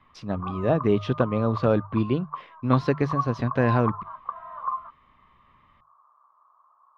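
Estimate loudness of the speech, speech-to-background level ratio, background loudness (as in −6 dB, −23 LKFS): −25.0 LKFS, 9.5 dB, −34.5 LKFS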